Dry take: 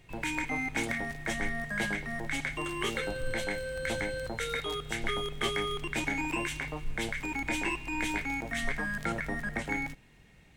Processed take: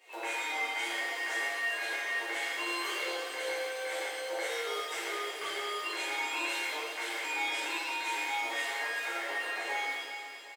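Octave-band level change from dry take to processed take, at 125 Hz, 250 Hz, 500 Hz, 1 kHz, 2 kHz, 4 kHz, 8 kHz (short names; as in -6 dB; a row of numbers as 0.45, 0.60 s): under -40 dB, -12.5 dB, -2.0 dB, +2.0 dB, +0.5 dB, +2.0 dB, +0.5 dB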